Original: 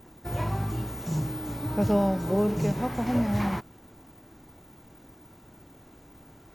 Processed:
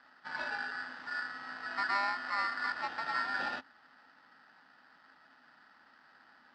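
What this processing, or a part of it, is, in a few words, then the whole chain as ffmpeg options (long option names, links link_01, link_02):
ring modulator pedal into a guitar cabinet: -af "aeval=exprs='val(0)*sgn(sin(2*PI*1600*n/s))':channel_layout=same,highpass=96,equalizer=frequency=110:width_type=q:width=4:gain=-10,equalizer=frequency=260:width_type=q:width=4:gain=10,equalizer=frequency=430:width_type=q:width=4:gain=-3,equalizer=frequency=840:width_type=q:width=4:gain=7,equalizer=frequency=2300:width_type=q:width=4:gain=-10,lowpass=frequency=4100:width=0.5412,lowpass=frequency=4100:width=1.3066,volume=-8dB"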